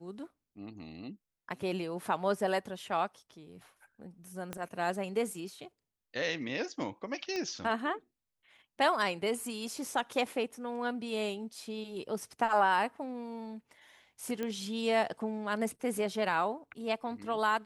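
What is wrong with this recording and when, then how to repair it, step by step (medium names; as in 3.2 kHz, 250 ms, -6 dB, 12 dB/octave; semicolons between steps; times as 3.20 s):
4.53 s: pop -22 dBFS
7.36 s: pop -23 dBFS
14.43 s: pop -22 dBFS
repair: de-click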